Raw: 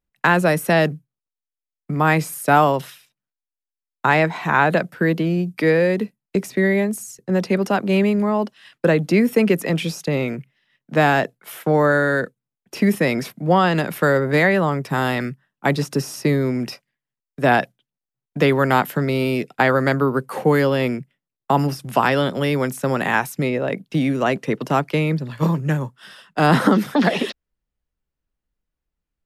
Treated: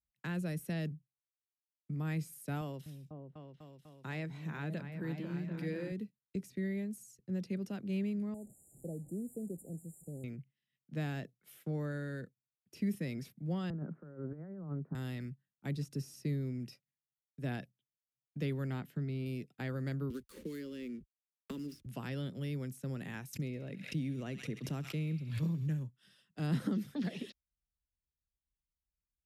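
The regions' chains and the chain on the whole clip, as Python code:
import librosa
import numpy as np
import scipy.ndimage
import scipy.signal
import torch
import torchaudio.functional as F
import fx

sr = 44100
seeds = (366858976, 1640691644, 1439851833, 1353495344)

y = fx.chain(x, sr, fx.low_shelf(hz=120.0, db=-8.5),
    fx.echo_opening(ms=248, hz=200, octaves=2, feedback_pct=70, wet_db=-3), at=(2.61, 5.92))
y = fx.chain(y, sr, fx.delta_mod(bps=64000, step_db=-28.0),
    fx.brickwall_bandstop(low_hz=850.0, high_hz=6900.0),
    fx.low_shelf(hz=410.0, db=-8.5), at=(8.34, 10.24))
y = fx.chain(y, sr, fx.cheby1_bandpass(low_hz=150.0, high_hz=1400.0, order=4),
    fx.over_compress(threshold_db=-22.0, ratio=-0.5), at=(13.7, 14.95))
y = fx.chain(y, sr, fx.lowpass(hz=3200.0, slope=6),
    fx.notch(hz=540.0, q=11.0), at=(18.7, 19.26))
y = fx.chain(y, sr, fx.backlash(play_db=-32.5),
    fx.fixed_phaser(hz=310.0, stages=4),
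    fx.band_squash(depth_pct=100), at=(20.1, 21.86))
y = fx.chain(y, sr, fx.echo_wet_highpass(ms=68, feedback_pct=74, hz=2200.0, wet_db=-10),
    fx.pre_swell(db_per_s=75.0), at=(23.33, 25.83))
y = scipy.signal.sosfilt(scipy.signal.butter(2, 48.0, 'highpass', fs=sr, output='sos'), y)
y = fx.tone_stack(y, sr, knobs='10-0-1')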